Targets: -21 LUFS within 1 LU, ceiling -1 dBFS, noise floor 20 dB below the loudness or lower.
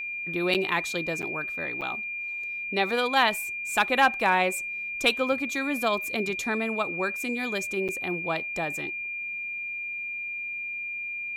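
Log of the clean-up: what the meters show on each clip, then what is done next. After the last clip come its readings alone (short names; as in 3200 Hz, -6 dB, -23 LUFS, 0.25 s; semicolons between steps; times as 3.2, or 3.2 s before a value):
dropouts 4; longest dropout 7.6 ms; steady tone 2400 Hz; tone level -31 dBFS; loudness -27.0 LUFS; peak -9.5 dBFS; loudness target -21.0 LUFS
-> interpolate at 0.54/1.22/1.81/7.88, 7.6 ms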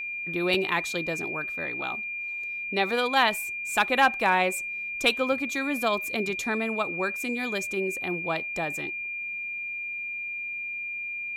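dropouts 0; steady tone 2400 Hz; tone level -31 dBFS
-> notch 2400 Hz, Q 30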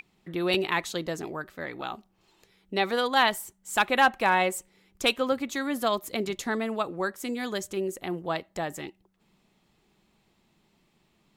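steady tone none; loudness -28.0 LUFS; peak -9.5 dBFS; loudness target -21.0 LUFS
-> gain +7 dB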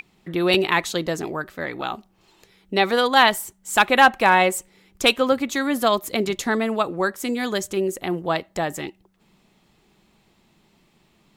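loudness -21.0 LUFS; peak -2.5 dBFS; noise floor -62 dBFS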